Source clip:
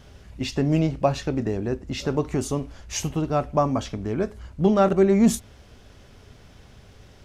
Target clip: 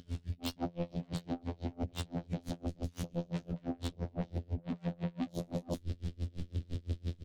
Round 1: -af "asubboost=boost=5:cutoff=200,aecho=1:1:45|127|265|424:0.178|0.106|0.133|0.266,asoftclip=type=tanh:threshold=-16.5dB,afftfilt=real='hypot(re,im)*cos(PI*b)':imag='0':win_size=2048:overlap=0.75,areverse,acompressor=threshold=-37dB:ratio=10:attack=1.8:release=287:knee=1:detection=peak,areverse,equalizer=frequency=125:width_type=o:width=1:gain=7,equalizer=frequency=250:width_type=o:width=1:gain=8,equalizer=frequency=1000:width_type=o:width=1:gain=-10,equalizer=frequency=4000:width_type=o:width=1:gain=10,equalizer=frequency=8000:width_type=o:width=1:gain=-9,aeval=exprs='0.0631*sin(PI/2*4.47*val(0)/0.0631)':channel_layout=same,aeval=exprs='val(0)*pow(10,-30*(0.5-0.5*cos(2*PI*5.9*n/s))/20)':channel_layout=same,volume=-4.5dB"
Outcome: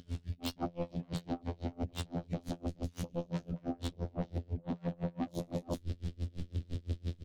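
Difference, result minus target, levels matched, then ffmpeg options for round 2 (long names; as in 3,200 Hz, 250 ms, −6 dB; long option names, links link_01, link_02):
soft clipping: distortion −4 dB
-af "asubboost=boost=5:cutoff=200,aecho=1:1:45|127|265|424:0.178|0.106|0.133|0.266,asoftclip=type=tanh:threshold=-22.5dB,afftfilt=real='hypot(re,im)*cos(PI*b)':imag='0':win_size=2048:overlap=0.75,areverse,acompressor=threshold=-37dB:ratio=10:attack=1.8:release=287:knee=1:detection=peak,areverse,equalizer=frequency=125:width_type=o:width=1:gain=7,equalizer=frequency=250:width_type=o:width=1:gain=8,equalizer=frequency=1000:width_type=o:width=1:gain=-10,equalizer=frequency=4000:width_type=o:width=1:gain=10,equalizer=frequency=8000:width_type=o:width=1:gain=-9,aeval=exprs='0.0631*sin(PI/2*4.47*val(0)/0.0631)':channel_layout=same,aeval=exprs='val(0)*pow(10,-30*(0.5-0.5*cos(2*PI*5.9*n/s))/20)':channel_layout=same,volume=-4.5dB"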